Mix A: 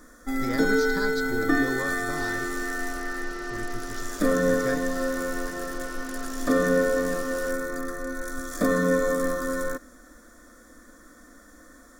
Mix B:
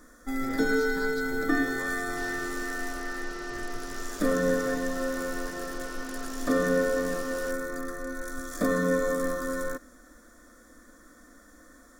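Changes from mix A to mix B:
speech -9.5 dB; first sound -3.0 dB

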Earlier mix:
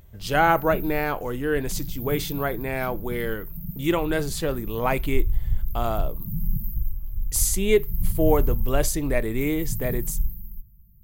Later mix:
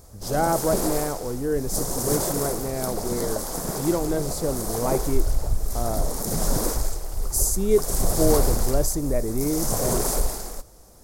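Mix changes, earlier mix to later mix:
background: remove brick-wall FIR band-stop 210–13000 Hz; master: add FFT filter 580 Hz 0 dB, 2.9 kHz -19 dB, 5.2 kHz 0 dB

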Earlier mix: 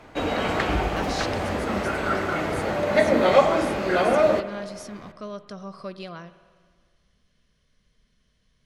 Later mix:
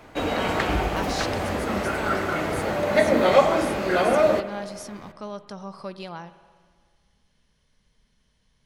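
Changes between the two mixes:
speech: remove Butterworth band-stop 870 Hz, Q 4; master: add treble shelf 12 kHz +11.5 dB

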